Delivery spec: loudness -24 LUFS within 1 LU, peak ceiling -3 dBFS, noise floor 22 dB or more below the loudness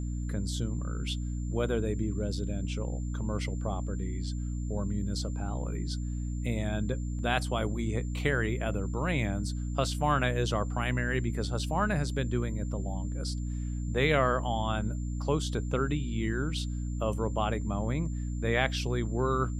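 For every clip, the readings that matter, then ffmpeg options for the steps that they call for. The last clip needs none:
hum 60 Hz; harmonics up to 300 Hz; hum level -31 dBFS; steady tone 7200 Hz; tone level -54 dBFS; loudness -31.5 LUFS; peak -11.0 dBFS; loudness target -24.0 LUFS
-> -af "bandreject=f=60:t=h:w=6,bandreject=f=120:t=h:w=6,bandreject=f=180:t=h:w=6,bandreject=f=240:t=h:w=6,bandreject=f=300:t=h:w=6"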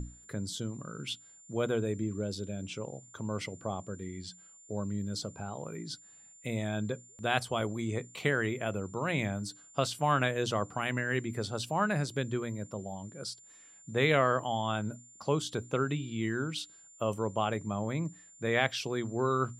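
hum none; steady tone 7200 Hz; tone level -54 dBFS
-> -af "bandreject=f=7.2k:w=30"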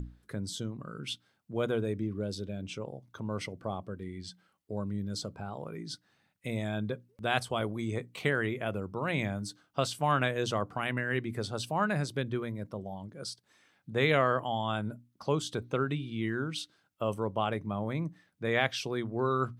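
steady tone none; loudness -33.5 LUFS; peak -11.5 dBFS; loudness target -24.0 LUFS
-> -af "volume=9.5dB,alimiter=limit=-3dB:level=0:latency=1"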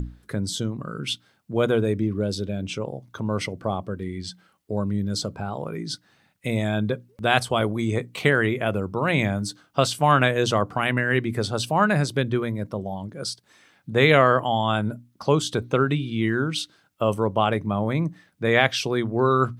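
loudness -24.0 LUFS; peak -3.0 dBFS; noise floor -63 dBFS

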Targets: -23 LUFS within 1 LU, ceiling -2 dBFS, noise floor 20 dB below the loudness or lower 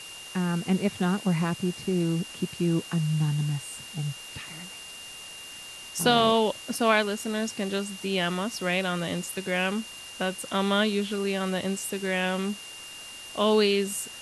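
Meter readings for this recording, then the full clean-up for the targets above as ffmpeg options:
steady tone 2800 Hz; tone level -42 dBFS; noise floor -43 dBFS; noise floor target -47 dBFS; loudness -27.0 LUFS; peak -7.5 dBFS; loudness target -23.0 LUFS
-> -af "bandreject=f=2.8k:w=30"
-af "afftdn=nr=6:nf=-43"
-af "volume=4dB"

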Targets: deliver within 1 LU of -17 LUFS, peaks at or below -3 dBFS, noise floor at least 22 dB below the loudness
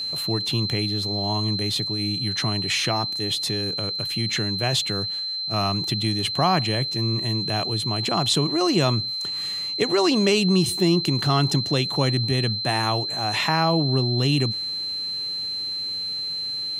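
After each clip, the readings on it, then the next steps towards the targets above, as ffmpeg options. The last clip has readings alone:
steady tone 4100 Hz; tone level -26 dBFS; loudness -22.5 LUFS; peak -6.5 dBFS; loudness target -17.0 LUFS
-> -af "bandreject=f=4.1k:w=30"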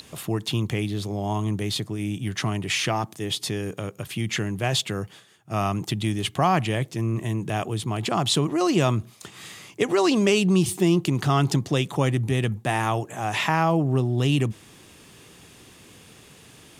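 steady tone none; loudness -24.5 LUFS; peak -7.0 dBFS; loudness target -17.0 LUFS
-> -af "volume=7.5dB,alimiter=limit=-3dB:level=0:latency=1"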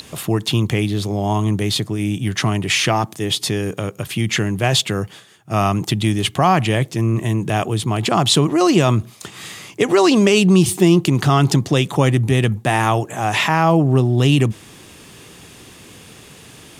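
loudness -17.5 LUFS; peak -3.0 dBFS; noise floor -43 dBFS

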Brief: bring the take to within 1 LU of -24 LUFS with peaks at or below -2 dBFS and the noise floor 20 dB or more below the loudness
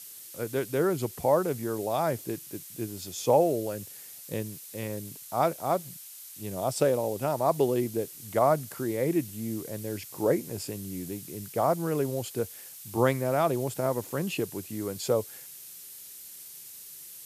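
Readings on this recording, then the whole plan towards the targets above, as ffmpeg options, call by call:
noise floor -46 dBFS; noise floor target -50 dBFS; loudness -29.5 LUFS; peak -9.5 dBFS; loudness target -24.0 LUFS
-> -af "afftdn=nr=6:nf=-46"
-af "volume=5.5dB"

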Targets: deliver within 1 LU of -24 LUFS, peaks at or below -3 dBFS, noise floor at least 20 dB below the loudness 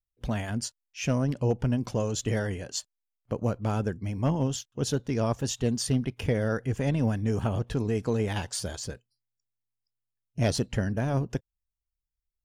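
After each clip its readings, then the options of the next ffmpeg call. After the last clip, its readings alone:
loudness -29.5 LUFS; peak -15.5 dBFS; loudness target -24.0 LUFS
-> -af "volume=5.5dB"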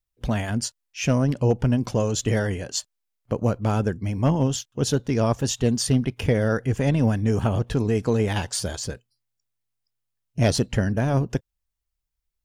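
loudness -24.0 LUFS; peak -10.0 dBFS; noise floor -81 dBFS

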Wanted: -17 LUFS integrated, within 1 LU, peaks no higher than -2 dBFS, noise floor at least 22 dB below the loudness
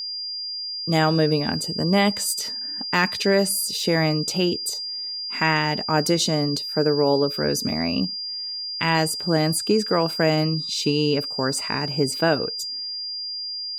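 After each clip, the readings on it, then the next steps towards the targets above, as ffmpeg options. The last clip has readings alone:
steady tone 4800 Hz; tone level -28 dBFS; loudness -22.5 LUFS; peak -6.5 dBFS; loudness target -17.0 LUFS
-> -af "bandreject=f=4.8k:w=30"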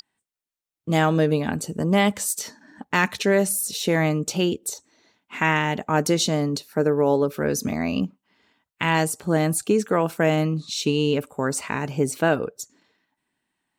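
steady tone none; loudness -23.0 LUFS; peak -7.0 dBFS; loudness target -17.0 LUFS
-> -af "volume=6dB,alimiter=limit=-2dB:level=0:latency=1"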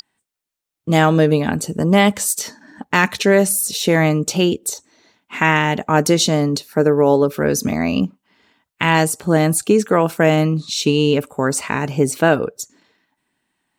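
loudness -17.0 LUFS; peak -2.0 dBFS; noise floor -82 dBFS

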